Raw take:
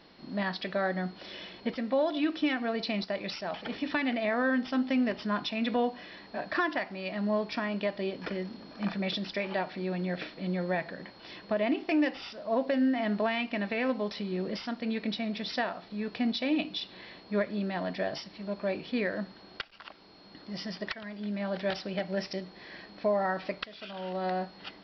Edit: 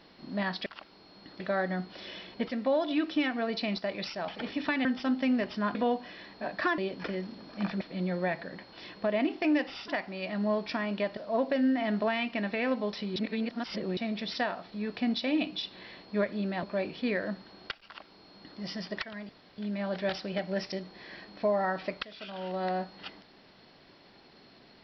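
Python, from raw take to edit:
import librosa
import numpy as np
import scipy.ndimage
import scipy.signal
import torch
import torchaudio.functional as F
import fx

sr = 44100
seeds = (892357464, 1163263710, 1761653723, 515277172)

y = fx.edit(x, sr, fx.cut(start_s=4.11, length_s=0.42),
    fx.cut(start_s=5.43, length_s=0.25),
    fx.move(start_s=6.71, length_s=1.29, to_s=12.35),
    fx.cut(start_s=9.03, length_s=1.25),
    fx.reverse_span(start_s=14.34, length_s=0.81),
    fx.cut(start_s=17.81, length_s=0.72),
    fx.duplicate(start_s=19.75, length_s=0.74, to_s=0.66),
    fx.insert_room_tone(at_s=21.19, length_s=0.29), tone=tone)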